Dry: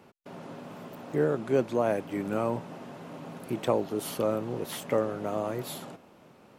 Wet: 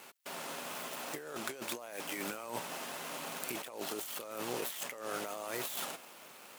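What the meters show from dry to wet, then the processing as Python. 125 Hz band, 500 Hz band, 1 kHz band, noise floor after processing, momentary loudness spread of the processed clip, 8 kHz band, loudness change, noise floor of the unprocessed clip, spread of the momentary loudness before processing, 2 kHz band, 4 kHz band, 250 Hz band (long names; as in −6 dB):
−18.5 dB, −14.0 dB, −6.0 dB, −54 dBFS, 4 LU, +4.0 dB, −9.5 dB, −57 dBFS, 16 LU, +0.5 dB, +2.0 dB, −14.0 dB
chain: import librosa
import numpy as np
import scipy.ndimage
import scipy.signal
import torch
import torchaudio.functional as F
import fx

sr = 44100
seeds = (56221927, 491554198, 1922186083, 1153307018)

y = scipy.signal.medfilt(x, 9)
y = np.diff(y, prepend=0.0)
y = fx.over_compress(y, sr, threshold_db=-57.0, ratio=-1.0)
y = y * librosa.db_to_amplitude(16.0)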